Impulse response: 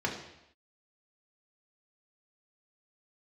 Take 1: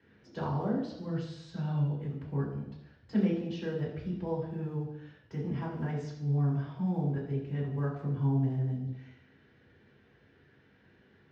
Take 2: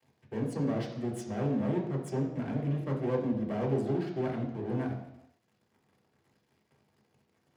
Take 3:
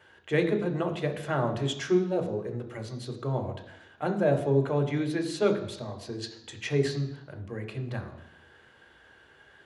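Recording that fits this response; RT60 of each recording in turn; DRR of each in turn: 2; not exponential, not exponential, not exponential; -7.0, -1.0, 4.5 dB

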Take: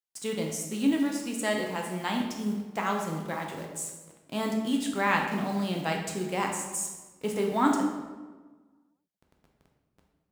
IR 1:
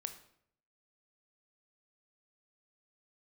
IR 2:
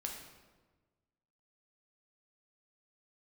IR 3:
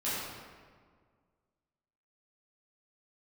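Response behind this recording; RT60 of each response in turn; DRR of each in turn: 2; 0.70, 1.3, 1.8 s; 8.0, 0.5, -11.5 dB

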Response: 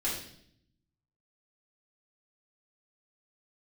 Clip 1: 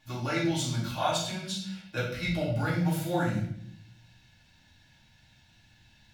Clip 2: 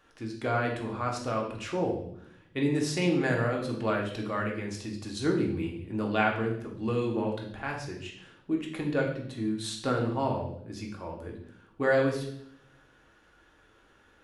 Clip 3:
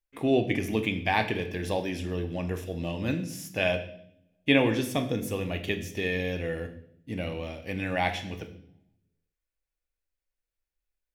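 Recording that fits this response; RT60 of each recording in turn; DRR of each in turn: 1; 0.65, 0.65, 0.65 s; -7.5, -0.5, 6.5 dB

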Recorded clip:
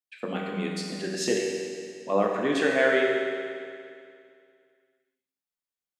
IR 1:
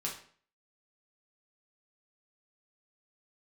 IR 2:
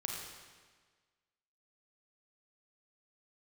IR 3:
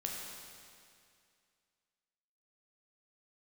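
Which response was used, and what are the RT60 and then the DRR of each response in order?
3; 0.50, 1.5, 2.3 s; -3.5, -0.5, -1.5 dB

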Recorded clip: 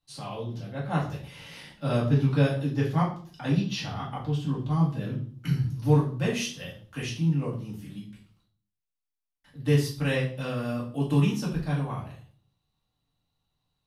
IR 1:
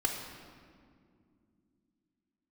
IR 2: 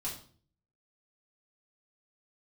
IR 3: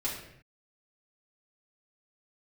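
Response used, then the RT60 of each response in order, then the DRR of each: 2; 2.3, 0.45, 0.65 s; 2.5, -6.0, -7.5 dB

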